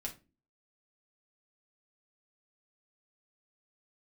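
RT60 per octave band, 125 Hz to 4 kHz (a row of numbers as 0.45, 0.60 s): 0.45, 0.55, 0.35, 0.25, 0.25, 0.20 s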